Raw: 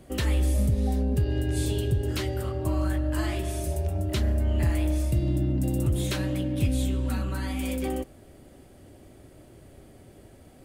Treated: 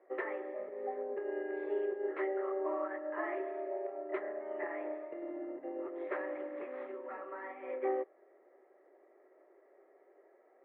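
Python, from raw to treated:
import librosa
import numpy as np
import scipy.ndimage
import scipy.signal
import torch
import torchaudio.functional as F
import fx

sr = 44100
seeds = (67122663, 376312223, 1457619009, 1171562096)

y = fx.delta_mod(x, sr, bps=32000, step_db=-36.5, at=(6.09, 6.92))
y = scipy.signal.sosfilt(scipy.signal.cheby1(4, 1.0, [370.0, 2000.0], 'bandpass', fs=sr, output='sos'), y)
y = fx.notch(y, sr, hz=1500.0, q=8.5)
y = fx.upward_expand(y, sr, threshold_db=-48.0, expansion=1.5)
y = F.gain(torch.from_numpy(y), 1.0).numpy()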